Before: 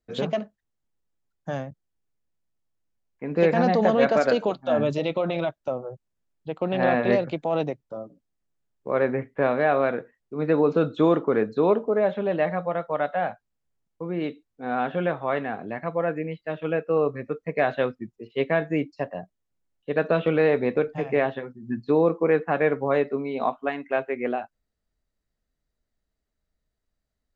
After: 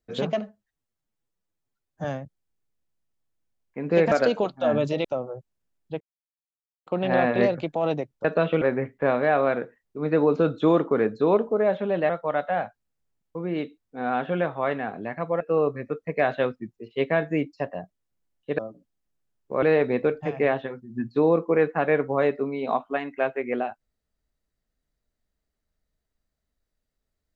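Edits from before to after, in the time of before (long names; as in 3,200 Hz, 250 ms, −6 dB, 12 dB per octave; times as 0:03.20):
0:00.41–0:01.50: time-stretch 1.5×
0:03.57–0:04.17: remove
0:05.10–0:05.60: remove
0:06.56: splice in silence 0.86 s
0:07.94–0:08.98: swap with 0:19.98–0:20.35
0:12.46–0:12.75: remove
0:16.06–0:16.80: remove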